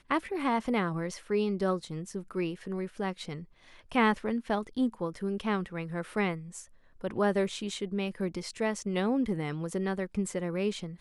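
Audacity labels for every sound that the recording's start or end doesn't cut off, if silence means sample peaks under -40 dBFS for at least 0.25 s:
3.920000	6.620000	sound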